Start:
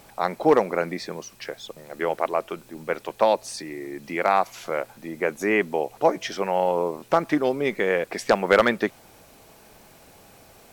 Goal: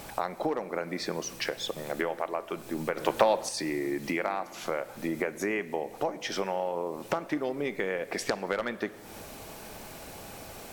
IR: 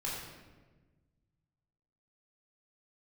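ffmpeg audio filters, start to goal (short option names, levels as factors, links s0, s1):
-filter_complex "[0:a]acompressor=threshold=0.02:ratio=10,asplit=2[s0][s1];[1:a]atrim=start_sample=2205,asetrate=29547,aresample=44100[s2];[s1][s2]afir=irnorm=-1:irlink=0,volume=0.112[s3];[s0][s3]amix=inputs=2:normalize=0,asettb=1/sr,asplit=3[s4][s5][s6];[s4]atrim=end=2.974[s7];[s5]atrim=start=2.97:end=3.49,asetpts=PTS-STARTPTS,afade=t=in:d=0.004:c=qsin,afade=t=out:st=0.516:d=0.004:c=qsin,acontrast=90[s8];[s6]atrim=start=3.486[s9];[s7][s8]acrossfade=d=0.004:c1=hsin:c2=qsin[s10];[s10][s9]acrossfade=d=0.004:c1=qsin:c2=hsin,volume=2"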